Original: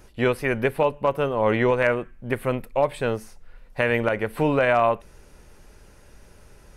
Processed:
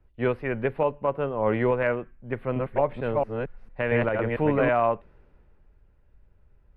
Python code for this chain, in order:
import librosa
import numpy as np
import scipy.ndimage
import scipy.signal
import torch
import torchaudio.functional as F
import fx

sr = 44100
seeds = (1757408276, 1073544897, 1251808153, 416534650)

y = fx.reverse_delay(x, sr, ms=226, wet_db=-1, at=(2.33, 4.69))
y = fx.air_absorb(y, sr, metres=460.0)
y = fx.band_widen(y, sr, depth_pct=40)
y = y * 10.0 ** (-2.0 / 20.0)